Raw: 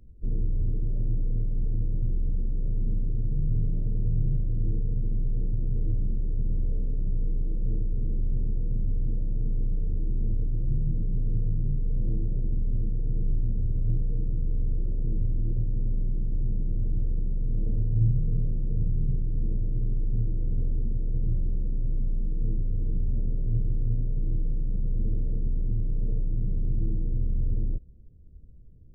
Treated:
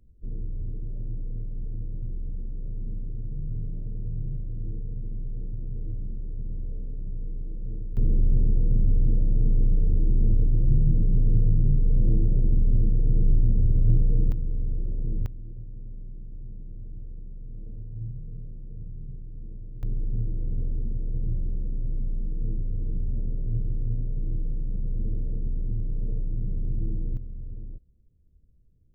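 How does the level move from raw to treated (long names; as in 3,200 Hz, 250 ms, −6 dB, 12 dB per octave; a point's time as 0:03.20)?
−6 dB
from 0:07.97 +6 dB
from 0:14.32 −1 dB
from 0:15.26 −12.5 dB
from 0:19.83 −1.5 dB
from 0:27.17 −11 dB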